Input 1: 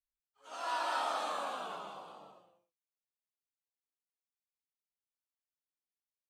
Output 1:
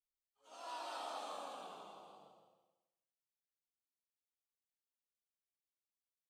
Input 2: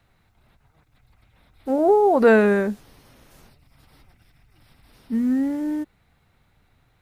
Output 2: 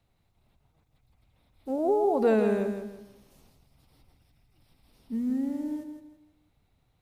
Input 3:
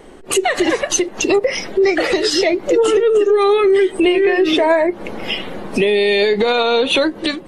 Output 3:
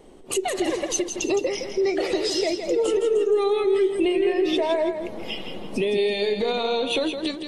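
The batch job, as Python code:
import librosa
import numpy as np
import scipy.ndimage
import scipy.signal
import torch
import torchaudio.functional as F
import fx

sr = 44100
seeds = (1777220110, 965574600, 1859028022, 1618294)

p1 = fx.peak_eq(x, sr, hz=1600.0, db=-9.0, octaves=1.0)
p2 = p1 + fx.echo_feedback(p1, sr, ms=164, feedback_pct=33, wet_db=-7.5, dry=0)
y = p2 * 10.0 ** (-8.0 / 20.0)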